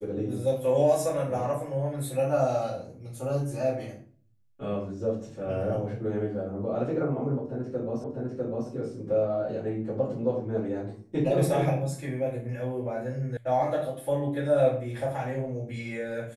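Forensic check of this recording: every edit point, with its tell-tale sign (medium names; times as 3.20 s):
8.04 s: repeat of the last 0.65 s
13.37 s: sound stops dead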